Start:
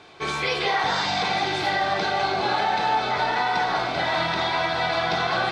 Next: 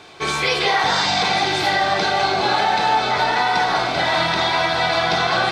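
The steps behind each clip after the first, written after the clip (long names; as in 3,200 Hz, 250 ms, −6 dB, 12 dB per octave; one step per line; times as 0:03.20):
high-shelf EQ 6,800 Hz +10 dB
level +4.5 dB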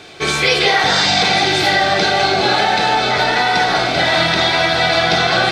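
parametric band 1,000 Hz −9 dB 0.54 octaves
level +6 dB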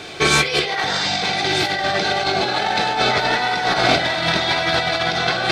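compressor whose output falls as the input rises −18 dBFS, ratio −0.5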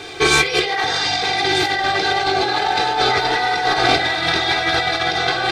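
comb filter 2.5 ms, depth 66%
level −1 dB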